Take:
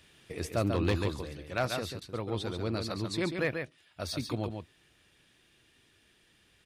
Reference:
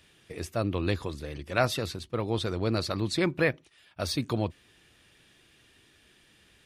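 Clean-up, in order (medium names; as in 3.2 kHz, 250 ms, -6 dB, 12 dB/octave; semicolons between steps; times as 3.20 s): clip repair -20 dBFS; interpolate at 2.00 s, 14 ms; inverse comb 140 ms -6 dB; gain correction +5.5 dB, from 1.21 s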